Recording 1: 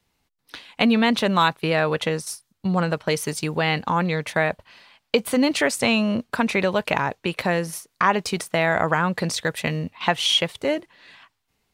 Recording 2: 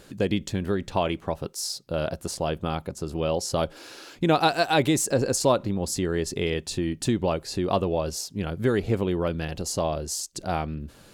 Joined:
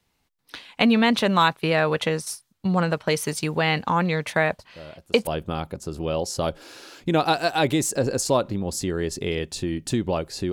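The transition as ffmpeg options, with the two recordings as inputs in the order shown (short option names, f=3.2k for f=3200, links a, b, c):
-filter_complex "[1:a]asplit=2[a][b];[0:a]apad=whole_dur=10.52,atrim=end=10.52,atrim=end=5.272[c];[b]atrim=start=2.418:end=7.67[d];[a]atrim=start=1.74:end=2.42,asetpts=PTS-STARTPTS,volume=-14dB,afade=t=in:d=0.004:c=hsin,afade=t=out:st=0.676:d=0.004:c=hsin,adelay=4590[e];[c][d]acrossfade=d=0.004:c1=hsin:c2=hsin[f];[f][e]amix=inputs=2:normalize=0"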